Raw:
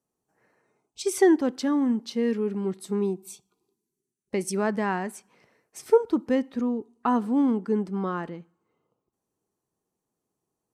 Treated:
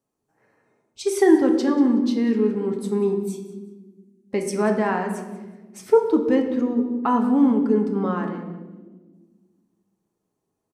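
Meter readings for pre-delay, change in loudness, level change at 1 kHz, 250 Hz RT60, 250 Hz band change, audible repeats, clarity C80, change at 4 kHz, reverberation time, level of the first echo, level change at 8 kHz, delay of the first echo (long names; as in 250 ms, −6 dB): 4 ms, +5.0 dB, +4.0 dB, 2.3 s, +5.5 dB, 1, 9.0 dB, +1.5 dB, 1.3 s, −17.0 dB, 0.0 dB, 187 ms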